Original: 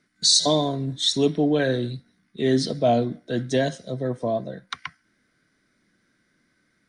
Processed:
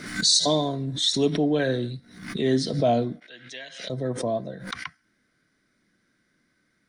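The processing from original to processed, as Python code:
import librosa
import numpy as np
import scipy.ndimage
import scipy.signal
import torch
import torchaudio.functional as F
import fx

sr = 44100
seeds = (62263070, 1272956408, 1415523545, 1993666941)

y = fx.bandpass_q(x, sr, hz=2500.0, q=2.4, at=(3.2, 3.9))
y = fx.pre_swell(y, sr, db_per_s=85.0)
y = y * 10.0 ** (-2.0 / 20.0)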